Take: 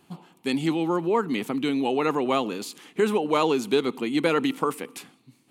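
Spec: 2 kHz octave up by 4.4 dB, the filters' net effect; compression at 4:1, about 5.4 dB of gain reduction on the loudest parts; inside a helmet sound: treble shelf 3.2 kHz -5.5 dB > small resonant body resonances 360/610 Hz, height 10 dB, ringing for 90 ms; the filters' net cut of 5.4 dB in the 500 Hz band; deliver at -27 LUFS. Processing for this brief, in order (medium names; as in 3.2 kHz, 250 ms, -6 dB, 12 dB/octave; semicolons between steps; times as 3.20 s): peaking EQ 500 Hz -7 dB; peaking EQ 2 kHz +8 dB; compression 4:1, threshold -25 dBFS; treble shelf 3.2 kHz -5.5 dB; small resonant body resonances 360/610 Hz, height 10 dB, ringing for 90 ms; trim +2 dB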